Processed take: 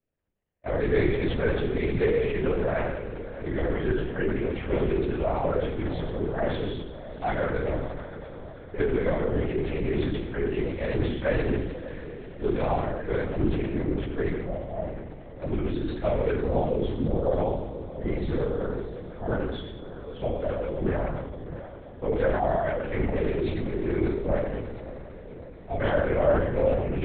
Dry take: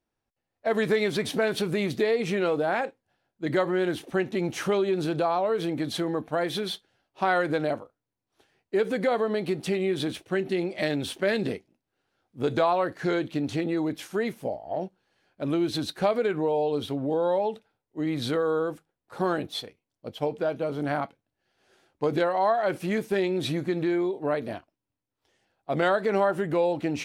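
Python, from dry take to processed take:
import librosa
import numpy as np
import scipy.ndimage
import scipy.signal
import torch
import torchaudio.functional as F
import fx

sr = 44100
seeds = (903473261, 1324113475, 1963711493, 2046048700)

y = scipy.signal.sosfilt(scipy.signal.butter(2, 2400.0, 'lowpass', fs=sr, output='sos'), x)
y = fx.peak_eq(y, sr, hz=1100.0, db=-11.0, octaves=0.69)
y = fx.hum_notches(y, sr, base_hz=60, count=7)
y = fx.echo_diffused(y, sr, ms=636, feedback_pct=58, wet_db=-13.0)
y = fx.rev_fdn(y, sr, rt60_s=0.98, lf_ratio=1.55, hf_ratio=0.95, size_ms=69.0, drr_db=-6.0)
y = fx.lpc_vocoder(y, sr, seeds[0], excitation='whisper', order=8)
y = fx.sustainer(y, sr, db_per_s=49.0)
y = y * 10.0 ** (-6.5 / 20.0)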